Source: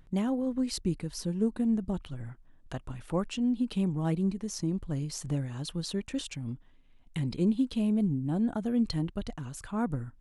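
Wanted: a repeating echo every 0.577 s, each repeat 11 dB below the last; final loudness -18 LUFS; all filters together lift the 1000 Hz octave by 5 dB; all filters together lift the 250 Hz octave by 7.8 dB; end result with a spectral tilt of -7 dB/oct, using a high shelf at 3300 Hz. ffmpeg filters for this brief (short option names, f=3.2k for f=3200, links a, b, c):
-af "equalizer=f=250:t=o:g=9,equalizer=f=1k:t=o:g=5.5,highshelf=f=3.3k:g=4,aecho=1:1:577|1154|1731:0.282|0.0789|0.0221,volume=6dB"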